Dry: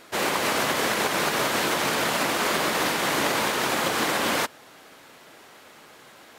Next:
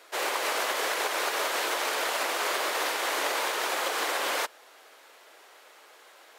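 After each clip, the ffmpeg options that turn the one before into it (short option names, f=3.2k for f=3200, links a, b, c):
-af "highpass=f=400:w=0.5412,highpass=f=400:w=1.3066,volume=-4dB"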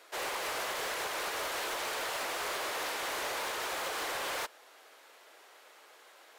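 -af "asoftclip=type=tanh:threshold=-27.5dB,volume=-3.5dB"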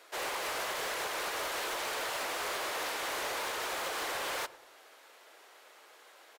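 -filter_complex "[0:a]asplit=2[a][b];[b]adelay=101,lowpass=f=870:p=1,volume=-15dB,asplit=2[c][d];[d]adelay=101,lowpass=f=870:p=1,volume=0.48,asplit=2[e][f];[f]adelay=101,lowpass=f=870:p=1,volume=0.48,asplit=2[g][h];[h]adelay=101,lowpass=f=870:p=1,volume=0.48[i];[a][c][e][g][i]amix=inputs=5:normalize=0"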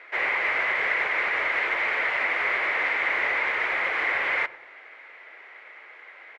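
-af "lowpass=f=2.1k:t=q:w=7.3,volume=3.5dB"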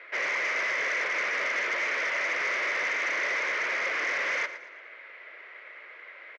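-af "asoftclip=type=tanh:threshold=-24.5dB,highpass=f=180:w=0.5412,highpass=f=180:w=1.3066,equalizer=f=220:t=q:w=4:g=-6,equalizer=f=570:t=q:w=4:g=4,equalizer=f=810:t=q:w=4:g=-9,lowpass=f=6.3k:w=0.5412,lowpass=f=6.3k:w=1.3066,aecho=1:1:115|230|345|460:0.2|0.0758|0.0288|0.0109"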